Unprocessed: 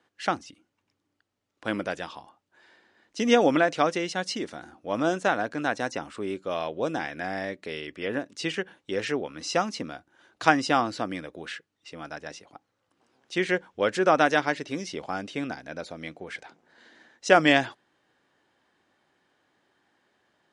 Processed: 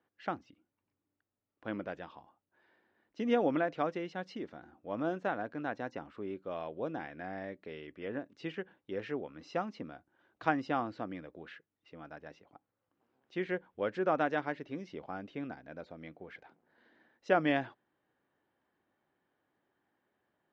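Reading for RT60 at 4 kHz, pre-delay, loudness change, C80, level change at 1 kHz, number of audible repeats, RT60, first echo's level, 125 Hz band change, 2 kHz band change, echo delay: no reverb audible, no reverb audible, −10.0 dB, no reverb audible, −10.0 dB, no echo audible, no reverb audible, no echo audible, −7.5 dB, −12.5 dB, no echo audible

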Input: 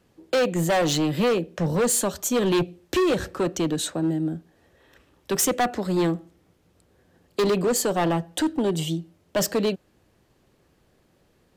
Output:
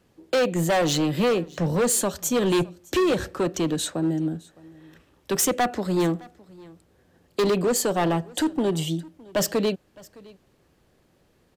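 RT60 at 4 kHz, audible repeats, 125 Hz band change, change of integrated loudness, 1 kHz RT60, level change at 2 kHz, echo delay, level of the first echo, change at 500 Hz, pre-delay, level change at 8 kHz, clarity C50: no reverb audible, 1, 0.0 dB, 0.0 dB, no reverb audible, 0.0 dB, 612 ms, −23.5 dB, 0.0 dB, no reverb audible, 0.0 dB, no reverb audible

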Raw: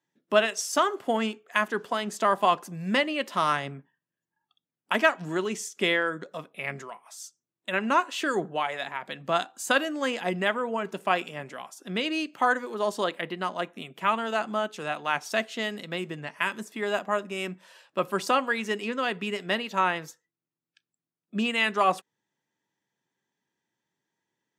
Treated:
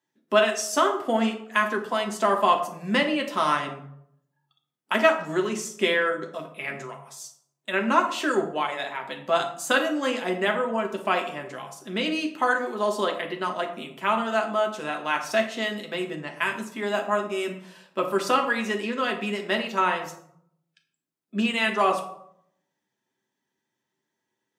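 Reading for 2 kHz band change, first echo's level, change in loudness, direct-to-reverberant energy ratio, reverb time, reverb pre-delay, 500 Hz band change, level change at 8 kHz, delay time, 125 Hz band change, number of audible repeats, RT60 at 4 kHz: +1.5 dB, no echo audible, +2.5 dB, 2.0 dB, 0.70 s, 5 ms, +3.5 dB, +1.5 dB, no echo audible, 0.0 dB, no echo audible, 0.40 s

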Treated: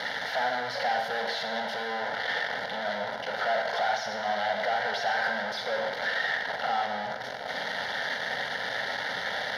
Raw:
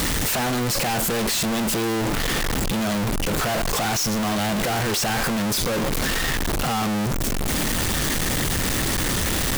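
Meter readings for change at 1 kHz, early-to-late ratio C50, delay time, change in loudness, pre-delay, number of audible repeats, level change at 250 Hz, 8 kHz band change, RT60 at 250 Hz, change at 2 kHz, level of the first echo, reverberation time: −2.0 dB, 5.5 dB, no echo audible, −7.0 dB, 38 ms, no echo audible, −21.0 dB, −25.0 dB, 1.4 s, −1.0 dB, no echo audible, 1.3 s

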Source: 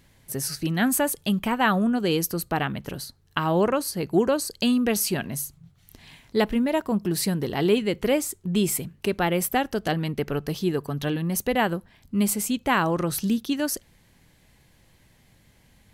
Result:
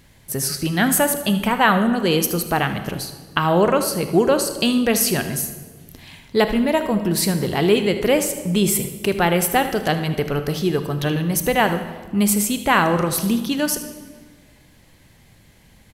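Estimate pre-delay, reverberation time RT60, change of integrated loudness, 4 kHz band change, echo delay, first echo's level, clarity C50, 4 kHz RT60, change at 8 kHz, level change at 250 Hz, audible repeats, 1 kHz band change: 26 ms, 1.6 s, +5.5 dB, +6.5 dB, 77 ms, −13.5 dB, 9.0 dB, 1.2 s, +6.5 dB, +4.0 dB, 1, +6.5 dB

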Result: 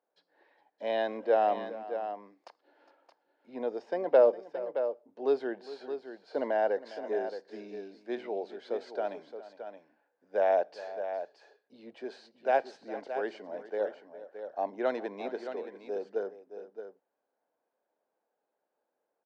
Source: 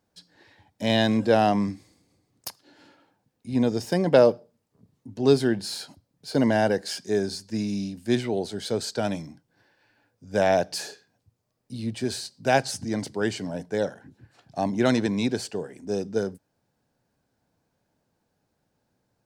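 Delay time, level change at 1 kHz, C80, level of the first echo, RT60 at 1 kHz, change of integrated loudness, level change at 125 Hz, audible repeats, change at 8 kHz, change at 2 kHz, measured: 408 ms, −4.5 dB, no reverb audible, −16.5 dB, no reverb audible, −7.0 dB, below −30 dB, 2, below −30 dB, −9.5 dB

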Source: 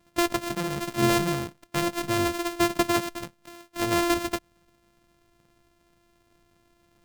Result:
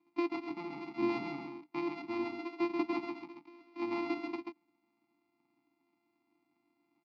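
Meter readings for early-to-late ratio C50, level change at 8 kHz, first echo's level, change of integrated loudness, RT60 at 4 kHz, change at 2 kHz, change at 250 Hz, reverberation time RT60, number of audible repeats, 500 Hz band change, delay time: no reverb audible, below −35 dB, −5.0 dB, −11.0 dB, no reverb audible, −13.0 dB, −8.0 dB, no reverb audible, 1, −10.5 dB, 135 ms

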